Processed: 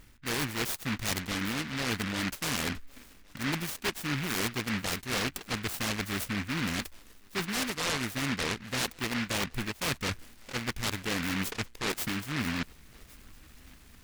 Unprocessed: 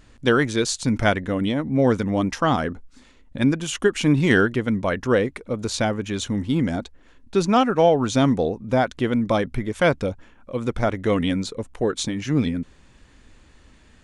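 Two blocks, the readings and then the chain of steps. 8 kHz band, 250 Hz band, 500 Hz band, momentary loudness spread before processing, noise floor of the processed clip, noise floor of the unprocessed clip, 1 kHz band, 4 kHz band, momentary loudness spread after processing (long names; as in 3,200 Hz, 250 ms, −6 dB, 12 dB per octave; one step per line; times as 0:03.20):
−2.0 dB, −13.0 dB, −18.0 dB, 10 LU, −55 dBFS, −53 dBFS, −12.0 dB, −2.0 dB, 5 LU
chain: reversed playback
downward compressor 6 to 1, threshold −28 dBFS, peak gain reduction 15.5 dB
reversed playback
feedback echo with a high-pass in the loop 1,110 ms, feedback 41%, high-pass 940 Hz, level −21 dB
short delay modulated by noise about 1,800 Hz, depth 0.44 ms
level −1.5 dB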